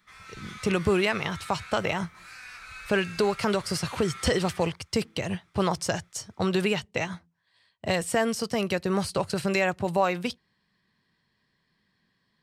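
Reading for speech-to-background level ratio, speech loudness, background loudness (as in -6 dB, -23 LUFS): 15.5 dB, -27.5 LUFS, -43.0 LUFS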